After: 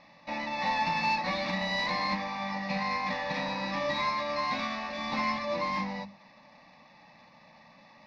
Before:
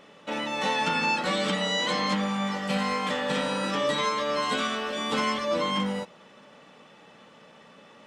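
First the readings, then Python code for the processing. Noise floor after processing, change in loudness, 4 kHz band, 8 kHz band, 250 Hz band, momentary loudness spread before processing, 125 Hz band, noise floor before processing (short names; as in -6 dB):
-57 dBFS, -4.0 dB, -7.0 dB, -12.5 dB, -6.5 dB, 5 LU, -5.0 dB, -53 dBFS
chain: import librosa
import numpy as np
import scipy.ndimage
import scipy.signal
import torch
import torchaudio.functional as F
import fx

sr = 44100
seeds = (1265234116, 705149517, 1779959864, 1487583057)

y = fx.cvsd(x, sr, bps=32000)
y = scipy.signal.sosfilt(scipy.signal.butter(4, 4900.0, 'lowpass', fs=sr, output='sos'), y)
y = fx.hum_notches(y, sr, base_hz=50, count=5)
y = fx.cheby_harmonics(y, sr, harmonics=(8,), levels_db=(-37,), full_scale_db=-15.0)
y = fx.fixed_phaser(y, sr, hz=2100.0, stages=8)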